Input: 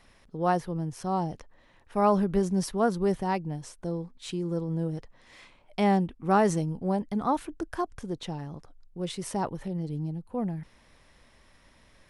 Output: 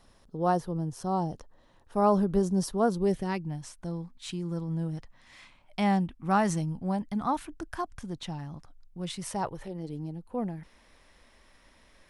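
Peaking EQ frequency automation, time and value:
peaking EQ -10.5 dB 0.8 oct
2.86 s 2.2 kHz
3.53 s 440 Hz
9.15 s 440 Hz
9.88 s 120 Hz

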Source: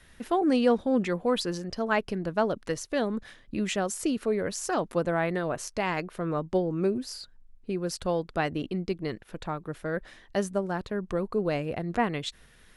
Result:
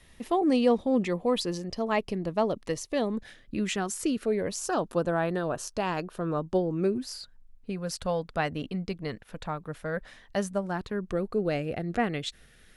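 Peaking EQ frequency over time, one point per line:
peaking EQ -13.5 dB 0.23 oct
3.09 s 1.5 kHz
3.87 s 530 Hz
4.69 s 2.1 kHz
6.65 s 2.1 kHz
7.09 s 350 Hz
10.59 s 350 Hz
11.15 s 1 kHz

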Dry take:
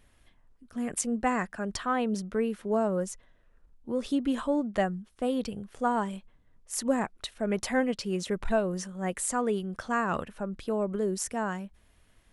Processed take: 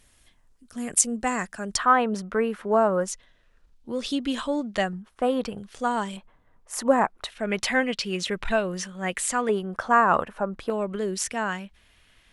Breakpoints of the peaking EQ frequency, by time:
peaking EQ +12 dB 2.3 oct
7.7 kHz
from 1.78 s 1.2 kHz
from 3.08 s 4.2 kHz
from 4.93 s 1.1 kHz
from 5.58 s 4.5 kHz
from 6.17 s 950 Hz
from 7.30 s 2.8 kHz
from 9.49 s 940 Hz
from 10.70 s 2.9 kHz

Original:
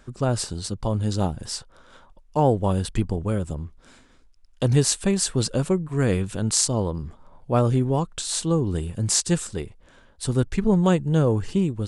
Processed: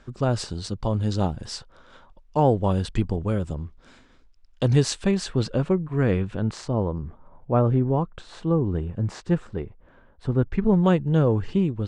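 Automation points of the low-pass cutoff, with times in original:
4.75 s 5.4 kHz
5.65 s 2.7 kHz
6.19 s 2.7 kHz
6.80 s 1.6 kHz
10.41 s 1.6 kHz
10.88 s 3.3 kHz

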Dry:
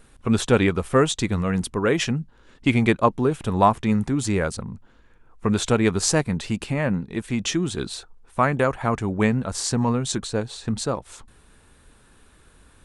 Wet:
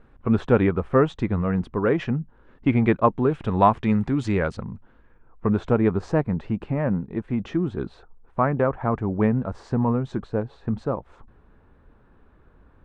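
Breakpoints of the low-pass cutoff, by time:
2.70 s 1.5 kHz
3.59 s 2.9 kHz
4.43 s 2.9 kHz
5.60 s 1.2 kHz

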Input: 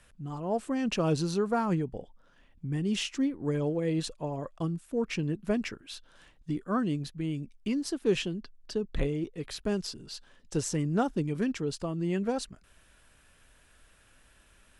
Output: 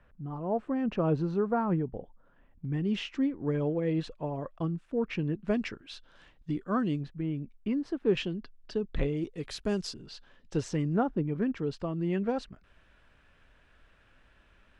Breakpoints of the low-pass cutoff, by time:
1.5 kHz
from 2.65 s 2.7 kHz
from 5.48 s 4.6 kHz
from 7.01 s 1.9 kHz
from 8.17 s 3.8 kHz
from 9.17 s 8.2 kHz
from 9.94 s 3.9 kHz
from 10.96 s 1.7 kHz
from 11.57 s 3 kHz

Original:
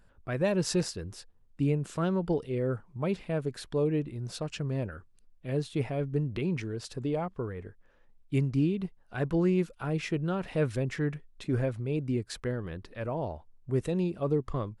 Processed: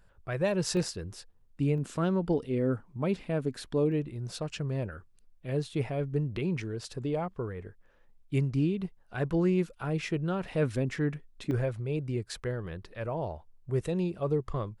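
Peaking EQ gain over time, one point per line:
peaking EQ 260 Hz 0.35 oct
-12.5 dB
from 0.77 s -2 dB
from 1.78 s +6.5 dB
from 3.92 s -3 dB
from 10.63 s +3.5 dB
from 11.51 s -8 dB

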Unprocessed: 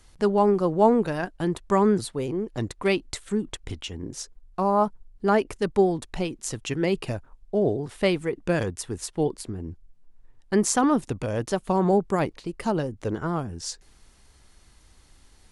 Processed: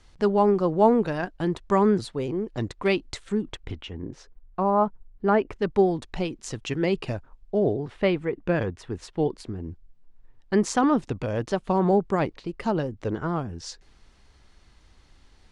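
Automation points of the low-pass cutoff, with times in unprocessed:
3.29 s 5.7 kHz
3.93 s 2.4 kHz
5.45 s 2.4 kHz
5.86 s 5.6 kHz
7.61 s 5.6 kHz
8.02 s 2.8 kHz
8.78 s 2.8 kHz
9.29 s 4.9 kHz

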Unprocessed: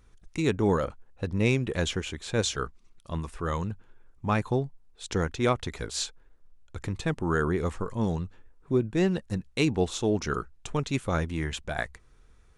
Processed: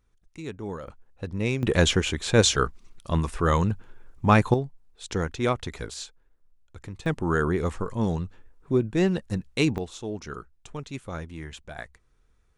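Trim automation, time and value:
-10.5 dB
from 0.88 s -2.5 dB
from 1.63 s +8 dB
from 4.54 s 0 dB
from 5.94 s -6.5 dB
from 7.06 s +2 dB
from 9.78 s -7.5 dB

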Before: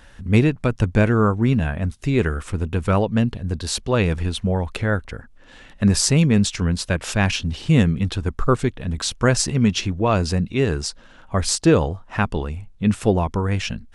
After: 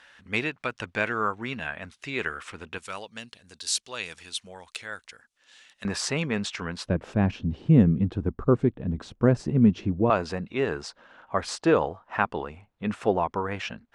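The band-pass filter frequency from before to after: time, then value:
band-pass filter, Q 0.7
2.3 kHz
from 2.78 s 6.7 kHz
from 5.85 s 1.3 kHz
from 6.86 s 260 Hz
from 10.10 s 1 kHz

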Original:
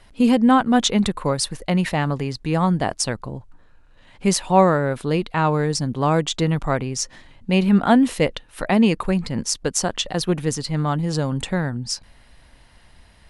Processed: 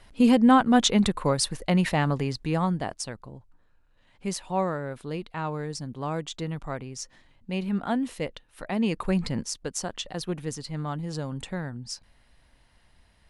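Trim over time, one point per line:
2.32 s -2.5 dB
3.10 s -12 dB
8.69 s -12 dB
9.28 s -1.5 dB
9.50 s -10 dB

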